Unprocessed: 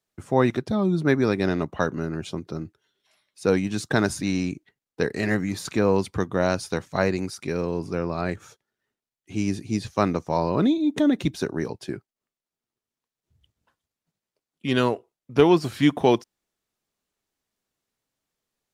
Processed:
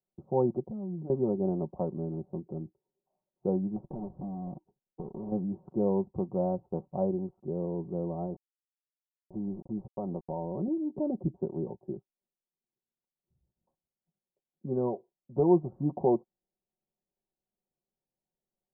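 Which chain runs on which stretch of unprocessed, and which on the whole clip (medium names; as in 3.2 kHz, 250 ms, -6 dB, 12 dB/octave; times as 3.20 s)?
0.63–1.10 s: comb 4.1 ms, depth 31% + compression 5:1, threshold -30 dBFS
3.76–5.32 s: square wave that keeps the level + compression 5:1, threshold -29 dBFS
8.25–10.68 s: small samples zeroed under -35.5 dBFS + compression 2.5:1, threshold -24 dBFS
whole clip: steep low-pass 880 Hz 48 dB/octave; comb 5.4 ms, depth 64%; trim -8 dB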